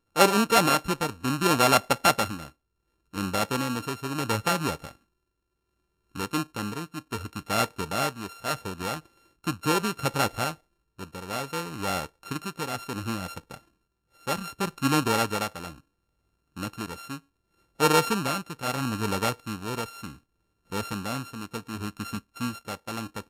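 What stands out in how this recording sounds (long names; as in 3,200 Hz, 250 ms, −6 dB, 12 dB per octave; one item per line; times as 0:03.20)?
a buzz of ramps at a fixed pitch in blocks of 32 samples
tremolo triangle 0.69 Hz, depth 65%
Ogg Vorbis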